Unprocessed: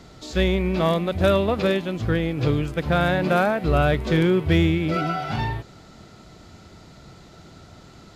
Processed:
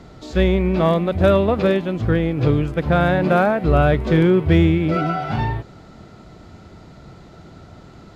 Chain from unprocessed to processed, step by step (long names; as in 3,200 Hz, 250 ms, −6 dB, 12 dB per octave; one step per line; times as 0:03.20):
high-shelf EQ 2,700 Hz −10.5 dB
level +4.5 dB